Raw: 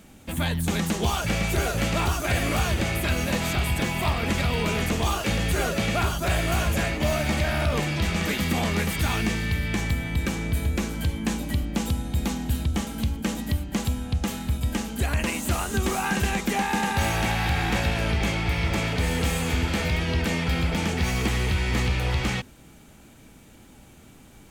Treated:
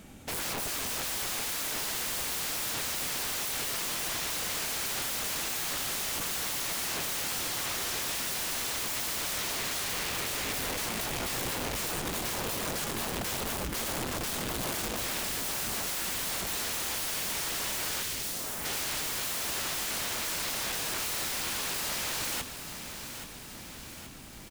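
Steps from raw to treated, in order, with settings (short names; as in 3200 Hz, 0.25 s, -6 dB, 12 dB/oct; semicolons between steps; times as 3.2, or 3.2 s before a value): wrapped overs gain 29 dB; 18.02–18.64 bell 620 Hz -> 4500 Hz -15 dB 1.7 oct; on a send: feedback echo 0.826 s, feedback 59%, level -10 dB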